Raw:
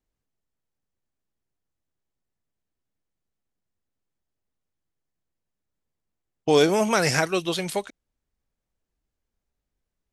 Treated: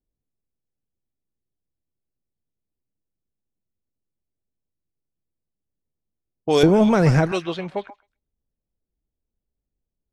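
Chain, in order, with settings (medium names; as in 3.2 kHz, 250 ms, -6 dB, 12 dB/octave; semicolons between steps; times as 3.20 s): 6.63–7.32 s: tilt EQ -4.5 dB/octave; repeats whose band climbs or falls 131 ms, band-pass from 1.1 kHz, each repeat 1.4 oct, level -9 dB; level-controlled noise filter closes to 490 Hz, open at -15 dBFS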